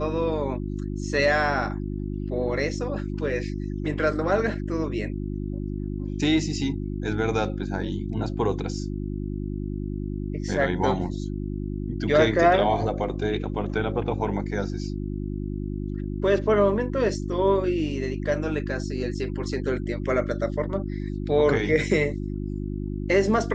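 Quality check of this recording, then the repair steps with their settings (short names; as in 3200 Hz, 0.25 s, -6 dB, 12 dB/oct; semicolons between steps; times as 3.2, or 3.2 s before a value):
hum 50 Hz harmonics 7 -30 dBFS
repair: de-hum 50 Hz, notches 7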